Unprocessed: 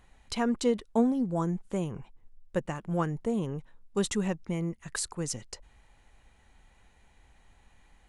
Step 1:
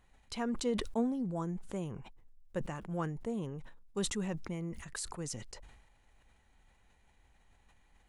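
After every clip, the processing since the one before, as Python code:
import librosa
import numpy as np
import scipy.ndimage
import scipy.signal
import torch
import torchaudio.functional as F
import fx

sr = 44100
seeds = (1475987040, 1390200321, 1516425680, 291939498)

y = fx.sustainer(x, sr, db_per_s=52.0)
y = F.gain(torch.from_numpy(y), -7.5).numpy()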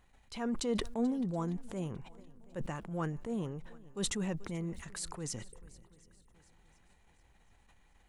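y = fx.spec_erase(x, sr, start_s=5.51, length_s=0.83, low_hz=520.0, high_hz=8100.0)
y = fx.echo_swing(y, sr, ms=726, ratio=1.5, feedback_pct=38, wet_db=-22)
y = fx.transient(y, sr, attack_db=-8, sustain_db=-3)
y = F.gain(torch.from_numpy(y), 2.0).numpy()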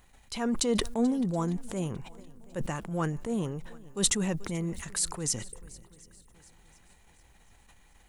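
y = fx.high_shelf(x, sr, hz=5500.0, db=9.5)
y = F.gain(torch.from_numpy(y), 5.5).numpy()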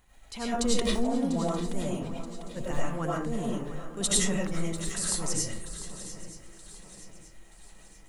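y = fx.echo_swing(x, sr, ms=927, ratio=3, feedback_pct=42, wet_db=-14.0)
y = fx.rev_freeverb(y, sr, rt60_s=0.41, hf_ratio=0.5, predelay_ms=60, drr_db=-5.5)
y = F.gain(torch.from_numpy(y), -4.5).numpy()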